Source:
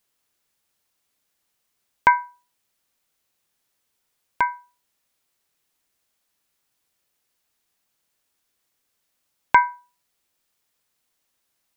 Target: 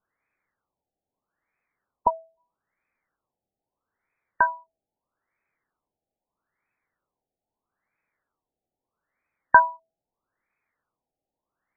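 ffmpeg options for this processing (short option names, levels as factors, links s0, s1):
-filter_complex "[0:a]asplit=2[s0][s1];[s1]asetrate=29433,aresample=44100,atempo=1.49831,volume=0.224[s2];[s0][s2]amix=inputs=2:normalize=0,crystalizer=i=6.5:c=0,afftfilt=real='re*lt(b*sr/1024,830*pow(2600/830,0.5+0.5*sin(2*PI*0.78*pts/sr)))':imag='im*lt(b*sr/1024,830*pow(2600/830,0.5+0.5*sin(2*PI*0.78*pts/sr)))':win_size=1024:overlap=0.75,volume=0.75"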